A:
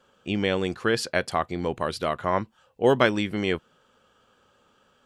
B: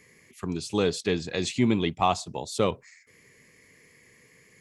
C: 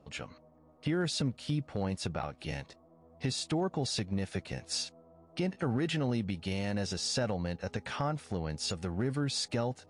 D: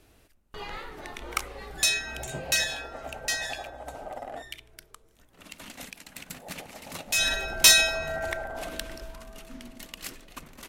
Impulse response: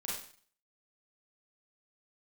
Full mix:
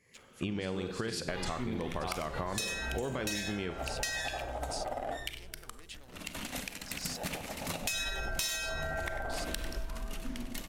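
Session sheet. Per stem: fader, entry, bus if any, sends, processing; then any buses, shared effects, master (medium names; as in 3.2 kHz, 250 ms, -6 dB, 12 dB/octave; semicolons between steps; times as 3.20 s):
+0.5 dB, 0.15 s, bus A, send -14.5 dB, no echo send, peak limiter -14.5 dBFS, peak gain reduction 10 dB
-8.0 dB, 0.00 s, bus A, send -3.5 dB, no echo send, tremolo saw up 4.6 Hz, depth 65%
-1.5 dB, 0.00 s, no bus, no send, no echo send, local Wiener filter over 25 samples; differentiator
+2.0 dB, 0.75 s, bus A, send -13 dB, echo send -15 dB, none
bus A: 0.0 dB, bass shelf 150 Hz +7.5 dB; compression, threshold -25 dBFS, peak gain reduction 14 dB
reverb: on, RT60 0.45 s, pre-delay 32 ms
echo: delay 96 ms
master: compression 6:1, threshold -32 dBFS, peak gain reduction 13 dB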